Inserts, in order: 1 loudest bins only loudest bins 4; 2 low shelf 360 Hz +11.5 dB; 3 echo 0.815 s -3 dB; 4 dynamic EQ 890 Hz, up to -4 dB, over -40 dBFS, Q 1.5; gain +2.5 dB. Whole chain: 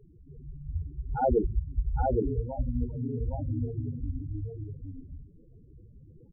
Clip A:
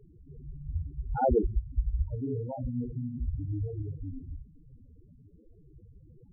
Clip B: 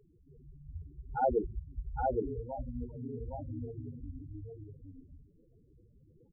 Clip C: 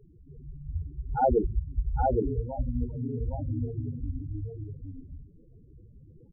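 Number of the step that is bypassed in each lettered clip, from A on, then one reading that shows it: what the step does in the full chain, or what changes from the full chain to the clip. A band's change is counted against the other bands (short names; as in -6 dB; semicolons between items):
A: 3, momentary loudness spread change +1 LU; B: 2, 125 Hz band -6.5 dB; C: 4, 1 kHz band +3.0 dB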